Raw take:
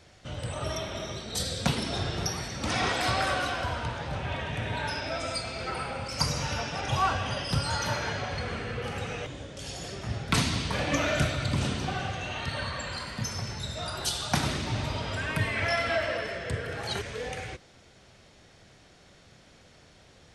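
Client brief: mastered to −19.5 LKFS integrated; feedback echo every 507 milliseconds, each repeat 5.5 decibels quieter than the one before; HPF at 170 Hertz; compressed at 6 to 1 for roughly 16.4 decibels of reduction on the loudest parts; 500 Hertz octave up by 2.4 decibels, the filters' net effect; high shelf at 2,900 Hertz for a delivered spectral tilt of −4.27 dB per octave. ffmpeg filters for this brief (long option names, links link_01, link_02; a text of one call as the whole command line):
ffmpeg -i in.wav -af "highpass=170,equalizer=frequency=500:width_type=o:gain=3.5,highshelf=frequency=2900:gain=-8,acompressor=threshold=-41dB:ratio=6,aecho=1:1:507|1014|1521|2028|2535|3042|3549:0.531|0.281|0.149|0.079|0.0419|0.0222|0.0118,volume=23dB" out.wav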